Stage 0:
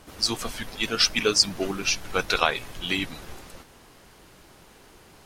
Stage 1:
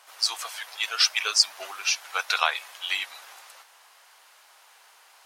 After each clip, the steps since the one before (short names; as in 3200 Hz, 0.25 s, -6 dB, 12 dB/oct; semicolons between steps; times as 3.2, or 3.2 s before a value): HPF 750 Hz 24 dB/oct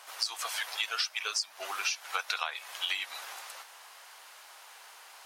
compressor 16:1, threshold -32 dBFS, peak gain reduction 19.5 dB; gain +3.5 dB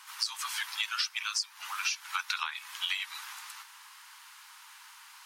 steep high-pass 880 Hz 72 dB/oct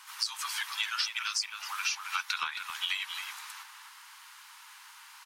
speakerphone echo 0.27 s, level -6 dB